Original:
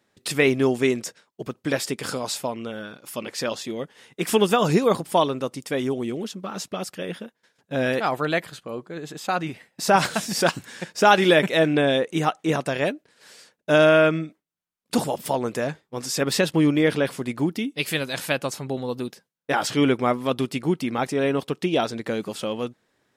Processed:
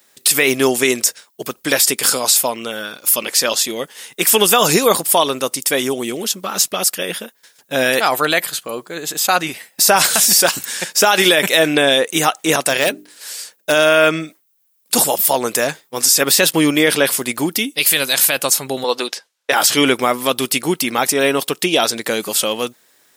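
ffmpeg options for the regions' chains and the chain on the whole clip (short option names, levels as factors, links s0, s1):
-filter_complex "[0:a]asettb=1/sr,asplit=3[s0][s1][s2];[s0]atrim=end=12.624[s3];[s1]atrim=start=12.62:end=13.72,asetpts=PTS-STARTPTS,afade=t=in:d=0.004:c=qsin,afade=t=out:st=1.096:d=0.004:c=qsin,bandreject=f=50:t=h:w=6,bandreject=f=100:t=h:w=6,bandreject=f=150:t=h:w=6,bandreject=f=200:t=h:w=6,bandreject=f=250:t=h:w=6,bandreject=f=300:t=h:w=6,bandreject=f=350:t=h:w=6,bandreject=f=400:t=h:w=6,bandreject=f=450:t=h:w=6,asoftclip=type=hard:threshold=0.141[s4];[s2]atrim=start=13.716[s5];[s3][s4]acrossfade=d=0.004:c1=hsin:c2=qsin[s6];[s6][s5]acrossfade=d=0.004:c1=qsin:c2=hsin,asettb=1/sr,asplit=3[s7][s8][s9];[s7]atrim=end=18.844[s10];[s8]atrim=start=18.84:end=19.52,asetpts=PTS-STARTPTS,afade=t=in:d=0.004:c=qsin,afade=t=out:st=0.676:d=0.004:c=qsin,highpass=450,lowpass=5200,acontrast=54[s11];[s9]atrim=start=19.516[s12];[s10][s11]acrossfade=d=0.004:c1=hsin:c2=qsin[s13];[s13][s12]acrossfade=d=0.004:c1=qsin:c2=hsin,aemphasis=mode=production:type=riaa,alimiter=level_in=3.35:limit=0.891:release=50:level=0:latency=1,volume=0.891"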